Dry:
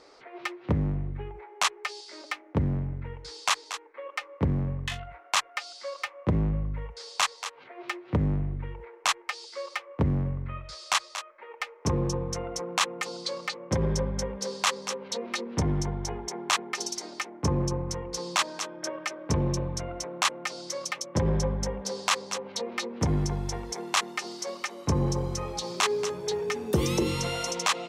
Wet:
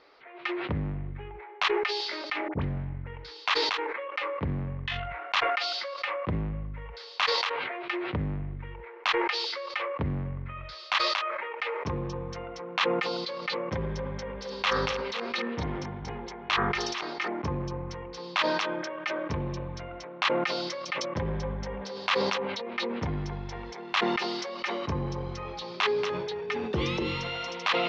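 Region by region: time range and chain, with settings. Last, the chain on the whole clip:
2.48–3.07 s: doubling 23 ms -11 dB + phase dispersion highs, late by 54 ms, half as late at 1.2 kHz
14.00–17.28 s: chunks repeated in reverse 459 ms, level -9 dB + de-hum 49.69 Hz, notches 38
whole clip: Bessel low-pass 2.5 kHz, order 6; tilt shelf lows -7 dB, about 1.4 kHz; decay stretcher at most 24 dB/s

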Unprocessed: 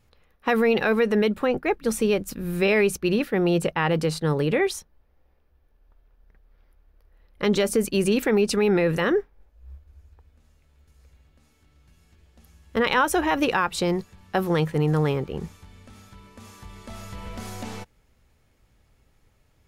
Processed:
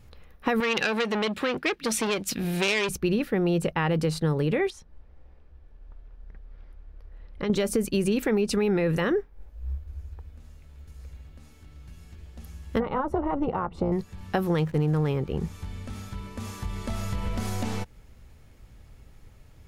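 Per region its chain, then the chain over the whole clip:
0.60–2.89 s: frequency weighting D + transformer saturation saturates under 3.2 kHz
4.70–7.50 s: compression 1.5:1, threshold -50 dBFS + distance through air 66 m
12.80–13.92 s: Savitzky-Golay filter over 65 samples + AM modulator 290 Hz, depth 50%
14.58–15.09 s: hysteresis with a dead band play -36 dBFS + tape noise reduction on one side only encoder only
whole clip: bass shelf 220 Hz +7 dB; compression 2.5:1, threshold -33 dBFS; trim +6 dB

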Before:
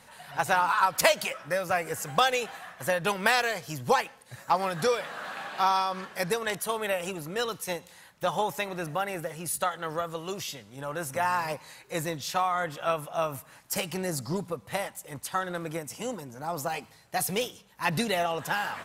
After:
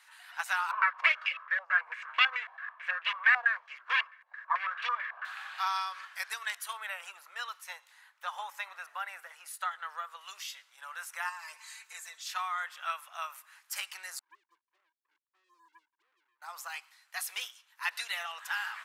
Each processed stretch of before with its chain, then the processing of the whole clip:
0.71–5.25 s: comb filter that takes the minimum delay 1.8 ms + step-sequenced low-pass 9.1 Hz 800–2700 Hz
6.73–10.21 s: high-pass 430 Hz + tilt shelf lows +6 dB, about 1.4 kHz
11.29–12.26 s: peaking EQ 7.4 kHz +9 dB 0.7 oct + comb 4.5 ms, depth 98% + compression 3:1, threshold -37 dBFS
14.19–16.42 s: Butterworth band-pass 330 Hz, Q 6.7 + waveshaping leveller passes 2
whole clip: high-pass 1.2 kHz 24 dB/octave; treble shelf 4.2 kHz -7 dB; trim -1 dB

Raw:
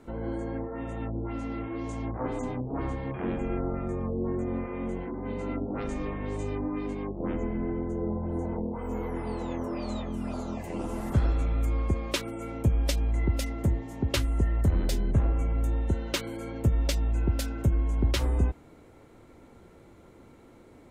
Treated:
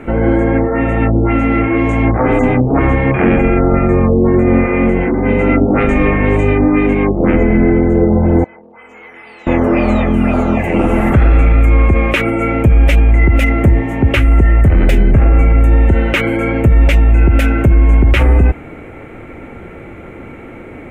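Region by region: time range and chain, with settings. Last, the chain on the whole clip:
8.44–9.47 s: band-pass filter 4.7 kHz, Q 2.1 + transformer saturation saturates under 430 Hz
whole clip: resonant high shelf 3.3 kHz -11.5 dB, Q 3; band-stop 1 kHz, Q 8.2; loudness maximiser +22 dB; trim -1 dB

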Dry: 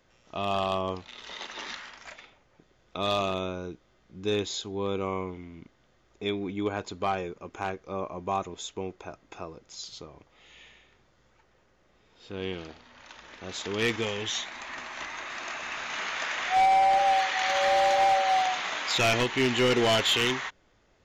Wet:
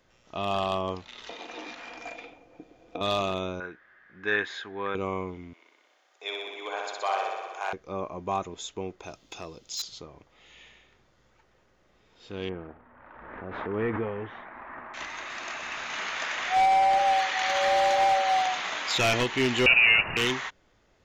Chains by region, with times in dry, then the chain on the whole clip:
1.29–3.01 s: compression, threshold -42 dBFS + small resonant body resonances 310/480/690/2400 Hz, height 18 dB, ringing for 50 ms
3.60–4.95 s: resonant low-pass 1.7 kHz, resonance Q 11 + tilt EQ +3.5 dB/octave
5.53–7.73 s: high-pass 570 Hz 24 dB/octave + band-stop 1.3 kHz, Q 28 + flutter echo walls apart 10.6 m, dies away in 1.4 s
9.03–9.82 s: resonant high shelf 2.5 kHz +9 dB, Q 1.5 + hard clipper -28 dBFS
12.49–14.94 s: low-pass 1.6 kHz 24 dB/octave + swell ahead of each attack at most 36 dB/s
19.66–20.17 s: tilt EQ -3 dB/octave + frequency inversion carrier 2.8 kHz
whole clip: none

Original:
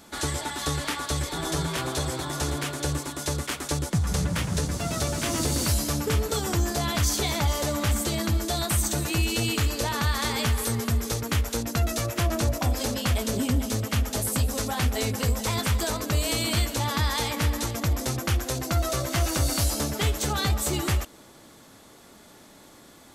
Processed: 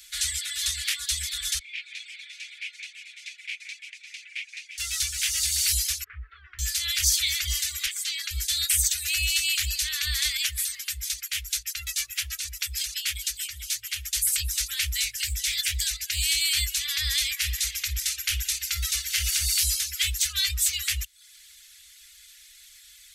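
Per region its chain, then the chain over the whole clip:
1.59–4.78 s: ladder band-pass 2.5 kHz, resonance 75% + echo whose repeats swap between lows and highs 173 ms, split 2.3 kHz, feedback 59%, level -4.5 dB
6.04–6.59 s: low-pass 1.5 kHz 24 dB/octave + bass shelf 250 Hz -7.5 dB
7.86–8.31 s: steep high-pass 440 Hz + treble shelf 8 kHz -11.5 dB
10.37–14.13 s: bass shelf 160 Hz -7.5 dB + harmonic tremolo 6.4 Hz, depth 50%, crossover 740 Hz
15.04–16.41 s: inverse Chebyshev band-stop 380–960 Hz + loudspeaker Doppler distortion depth 0.16 ms
17.36–19.46 s: doubling 49 ms -10.5 dB + band-passed feedback delay 60 ms, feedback 79%, band-pass 2.5 kHz, level -10 dB
whole clip: inverse Chebyshev band-stop 130–910 Hz, stop band 50 dB; bass shelf 92 Hz -8 dB; reverb removal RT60 0.52 s; trim +6.5 dB

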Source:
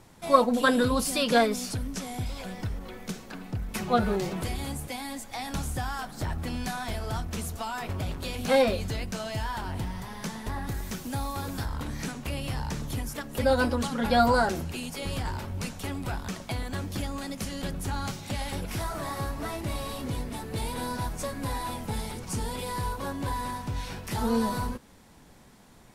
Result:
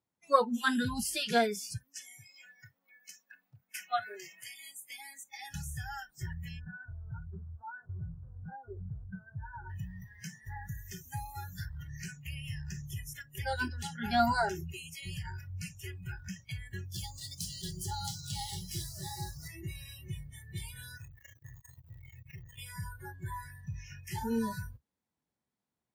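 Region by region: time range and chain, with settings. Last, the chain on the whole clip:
1.77–4.89 s: high-pass 300 Hz + peaking EQ 380 Hz -13.5 dB 0.39 oct
6.59–9.70 s: CVSD coder 32 kbps + steep low-pass 1.6 kHz 96 dB/octave + compression 16:1, threshold -27 dBFS
16.94–19.48 s: median filter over 3 samples + FFT filter 400 Hz 0 dB, 750 Hz +3 dB, 1.7 kHz -5 dB, 2.4 kHz -7 dB, 3.8 kHz +7 dB + frequency-shifting echo 232 ms, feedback 52%, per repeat +44 Hz, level -9.5 dB
20.97–22.58 s: treble shelf 8.8 kHz +5 dB + sample-rate reducer 7.6 kHz + transformer saturation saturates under 550 Hz
whole clip: high-pass 76 Hz; spectral noise reduction 30 dB; trim -4.5 dB

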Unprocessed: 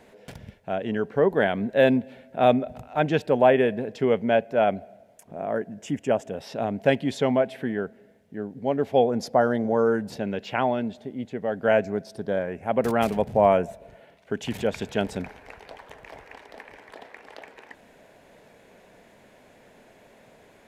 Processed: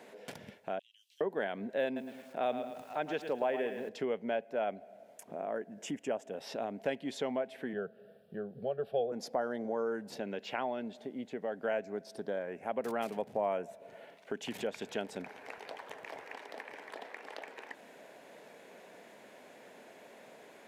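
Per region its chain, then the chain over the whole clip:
0.79–1.21 s: steep high-pass 3 kHz 48 dB/octave + compression 4:1, threshold -56 dBFS
1.85–3.89 s: bass shelf 260 Hz -4 dB + bit-crushed delay 111 ms, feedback 35%, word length 8-bit, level -10 dB
7.73–9.12 s: peaking EQ 160 Hz +10.5 dB 2.5 oct + static phaser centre 1.4 kHz, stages 8
whole clip: high-pass 250 Hz 12 dB/octave; compression 2:1, threshold -41 dBFS

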